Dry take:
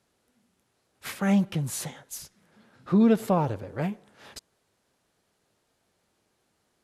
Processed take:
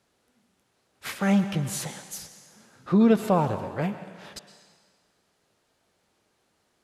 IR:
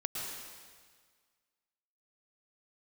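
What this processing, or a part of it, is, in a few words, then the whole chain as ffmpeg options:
filtered reverb send: -filter_complex "[0:a]asplit=2[link_01][link_02];[link_02]highpass=frequency=370:poles=1,lowpass=8700[link_03];[1:a]atrim=start_sample=2205[link_04];[link_03][link_04]afir=irnorm=-1:irlink=0,volume=-8dB[link_05];[link_01][link_05]amix=inputs=2:normalize=0"

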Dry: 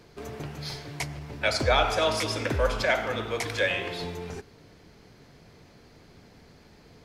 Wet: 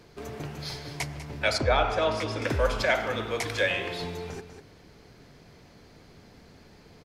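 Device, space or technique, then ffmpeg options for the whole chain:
ducked delay: -filter_complex "[0:a]asplit=3[link_01][link_02][link_03];[link_02]adelay=196,volume=-8dB[link_04];[link_03]apad=whole_len=319155[link_05];[link_04][link_05]sidechaincompress=threshold=-35dB:ratio=8:attack=16:release=720[link_06];[link_01][link_06]amix=inputs=2:normalize=0,asettb=1/sr,asplit=3[link_07][link_08][link_09];[link_07]atrim=end=1.584[link_10];[link_08]atrim=start=1.58:end=2.42,asetpts=PTS-STARTPTS,afade=type=in:duration=0.004:curve=qsin,afade=type=out:start_time=0.836:duration=0.004:curve=qsin,aemphasis=mode=reproduction:type=75kf[link_11];[link_09]atrim=start=2.416[link_12];[link_10][link_11]acrossfade=duration=0.004:curve1=hsin:curve2=qsin[link_13];[link_13][link_12]acrossfade=duration=0.004:curve1=qsin:curve2=hsin"

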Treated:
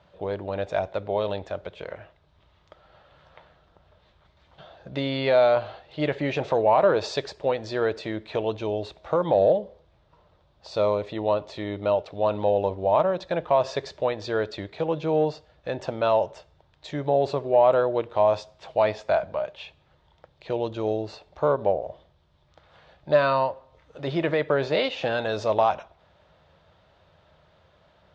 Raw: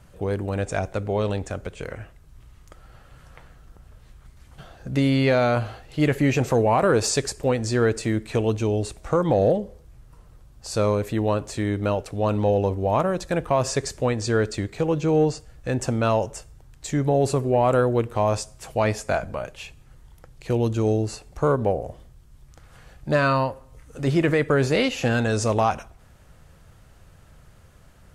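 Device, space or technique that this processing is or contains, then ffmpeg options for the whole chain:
guitar cabinet: -filter_complex "[0:a]asettb=1/sr,asplit=3[link_01][link_02][link_03];[link_01]atrim=end=10.684[link_04];[link_02]atrim=start=10.68:end=12.08,asetpts=PTS-STARTPTS,afade=type=in:duration=0.004:curve=qsin,afade=type=out:start_time=1.396:duration=0.004:curve=qsin,bandreject=frequency=1600:width=7[link_05];[link_03]atrim=start=12.076[link_06];[link_04][link_05]acrossfade=duration=0.004:curve1=hsin:curve2=qsin[link_07];[link_07][link_06]acrossfade=duration=0.004:curve1=qsin:curve2=hsin,highpass=98,equalizer=frequency=120:width_type=q:width=4:gain=-9,equalizer=frequency=240:width_type=q:width=4:gain=-9,equalizer=frequency=610:width_type=q:width=4:gain=9,equalizer=frequency=920:width_type=q:width=4:gain=6,equalizer=frequency=3600:width_type=q:width=4:gain=8,lowpass=frequency=4600:width=0.5412,lowpass=frequency=4600:width=1.3066,volume=-4.5dB"

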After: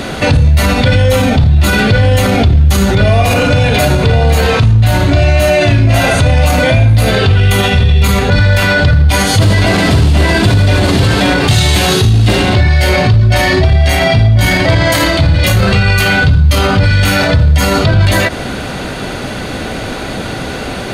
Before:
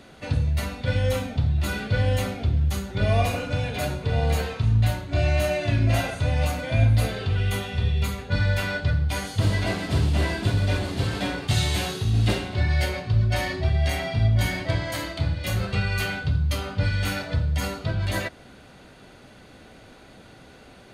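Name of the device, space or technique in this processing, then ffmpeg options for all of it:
loud club master: -af "acompressor=threshold=-22dB:ratio=2.5,asoftclip=type=hard:threshold=-17.5dB,alimiter=level_in=29dB:limit=-1dB:release=50:level=0:latency=1,volume=-1dB"

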